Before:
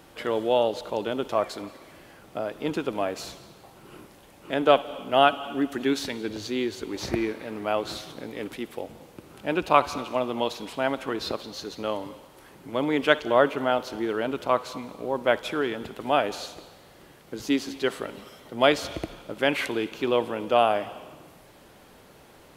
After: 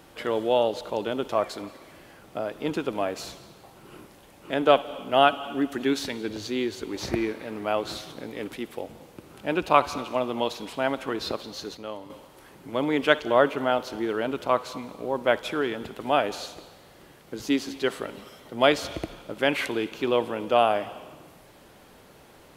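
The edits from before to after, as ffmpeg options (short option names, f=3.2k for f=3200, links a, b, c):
-filter_complex "[0:a]asplit=3[a][b][c];[a]atrim=end=11.772[d];[b]atrim=start=11.768:end=12.102,asetpts=PTS-STARTPTS,volume=-7dB[e];[c]atrim=start=12.098[f];[d][e]acrossfade=d=0.004:c1=hsin:c2=hsin[g];[g][f]acrossfade=d=0.004:c1=hsin:c2=hsin"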